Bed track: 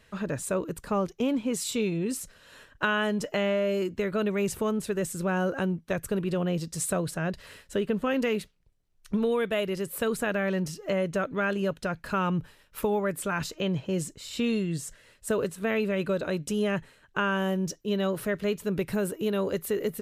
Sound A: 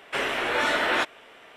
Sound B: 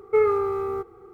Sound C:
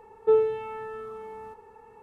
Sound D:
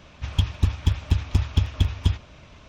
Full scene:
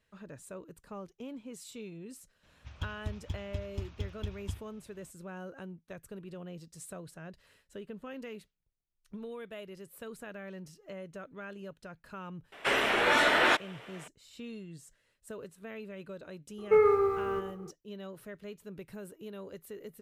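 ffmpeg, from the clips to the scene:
-filter_complex "[0:a]volume=-16.5dB[a];[2:a]asplit=2[b][c];[c]adelay=110.8,volume=-9dB,highshelf=f=4k:g=-2.49[d];[b][d]amix=inputs=2:normalize=0[e];[4:a]atrim=end=2.68,asetpts=PTS-STARTPTS,volume=-17dB,afade=t=in:d=0.004:c=hsin,afade=t=out:st=2.676:d=0.004:c=hsin,adelay=2430[f];[1:a]atrim=end=1.56,asetpts=PTS-STARTPTS,volume=-0.5dB,afade=t=in:d=0.004:c=hsin,afade=t=out:st=1.556:d=0.004:c=hsin,adelay=552132S[g];[e]atrim=end=1.13,asetpts=PTS-STARTPTS,volume=-3dB,afade=t=in:d=0.004:c=hsin,afade=t=out:st=1.126:d=0.004:c=hsin,adelay=16580[h];[a][f][g][h]amix=inputs=4:normalize=0"

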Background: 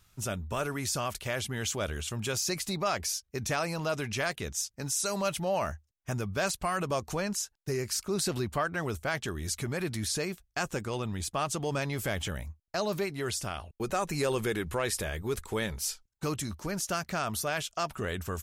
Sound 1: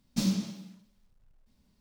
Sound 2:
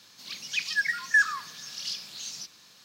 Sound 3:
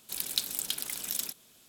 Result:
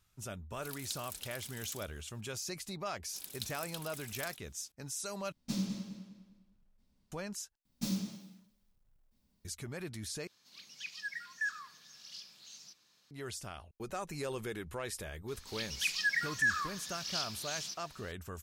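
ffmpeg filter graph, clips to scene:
-filter_complex "[3:a]asplit=2[a][b];[1:a]asplit=2[c][d];[2:a]asplit=2[e][f];[0:a]volume=-9.5dB[g];[c]asplit=2[h][i];[i]adelay=202,lowpass=f=4.7k:p=1,volume=-9dB,asplit=2[j][k];[k]adelay=202,lowpass=f=4.7k:p=1,volume=0.37,asplit=2[l][m];[m]adelay=202,lowpass=f=4.7k:p=1,volume=0.37,asplit=2[n][o];[o]adelay=202,lowpass=f=4.7k:p=1,volume=0.37[p];[h][j][l][n][p]amix=inputs=5:normalize=0[q];[d]highshelf=f=11k:g=11.5[r];[f]alimiter=limit=-19.5dB:level=0:latency=1:release=28[s];[g]asplit=4[t][u][v][w];[t]atrim=end=5.324[x];[q]atrim=end=1.8,asetpts=PTS-STARTPTS,volume=-7.5dB[y];[u]atrim=start=7.116:end=7.654[z];[r]atrim=end=1.8,asetpts=PTS-STARTPTS,volume=-7.5dB[aa];[v]atrim=start=9.446:end=10.274[ab];[e]atrim=end=2.84,asetpts=PTS-STARTPTS,volume=-14.5dB[ac];[w]atrim=start=13.106[ad];[a]atrim=end=1.68,asetpts=PTS-STARTPTS,volume=-13dB,afade=t=in:d=0.004:c=hsin,afade=t=out:st=1.676:d=0.004:c=hsin,adelay=530[ae];[b]atrim=end=1.68,asetpts=PTS-STARTPTS,volume=-12.5dB,afade=t=in:d=0.004:c=hsin,afade=t=out:st=1.676:d=0.004:c=hsin,adelay=3040[af];[s]atrim=end=2.84,asetpts=PTS-STARTPTS,volume=-3dB,afade=t=in:d=0.004:c=hsin,afade=t=out:st=2.836:d=0.004:c=hsin,adelay=15280[ag];[x][y]acrossfade=d=0.004:c1=hsin:c2=hsin[ah];[ah][z]acrossfade=d=0.004:c1=hsin:c2=hsin[ai];[ai][aa]acrossfade=d=0.004:c1=hsin:c2=hsin[aj];[aj][ab]acrossfade=d=0.004:c1=hsin:c2=hsin[ak];[ak][ac]acrossfade=d=0.004:c1=hsin:c2=hsin[al];[al][ad]acrossfade=d=0.004:c1=hsin:c2=hsin[am];[am][ae][af][ag]amix=inputs=4:normalize=0"

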